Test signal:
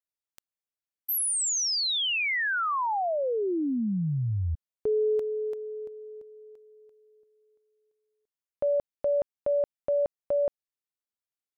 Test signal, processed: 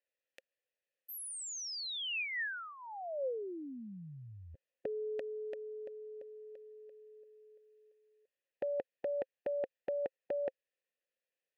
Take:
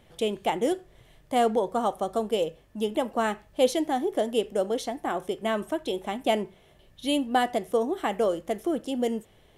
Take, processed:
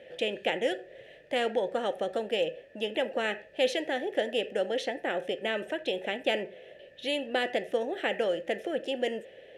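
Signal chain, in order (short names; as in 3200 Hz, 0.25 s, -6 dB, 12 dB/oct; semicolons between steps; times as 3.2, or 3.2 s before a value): vowel filter e; spectral compressor 2:1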